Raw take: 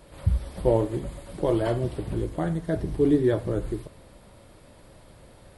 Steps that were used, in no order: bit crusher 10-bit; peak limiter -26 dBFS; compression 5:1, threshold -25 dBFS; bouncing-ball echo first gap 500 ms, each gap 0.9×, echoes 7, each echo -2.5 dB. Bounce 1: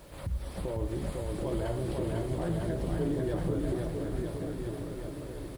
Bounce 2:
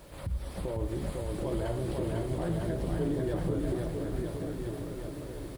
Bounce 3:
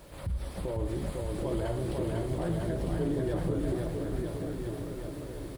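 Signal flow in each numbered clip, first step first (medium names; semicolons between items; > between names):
compression > peak limiter > bouncing-ball echo > bit crusher; compression > bit crusher > peak limiter > bouncing-ball echo; bit crusher > peak limiter > compression > bouncing-ball echo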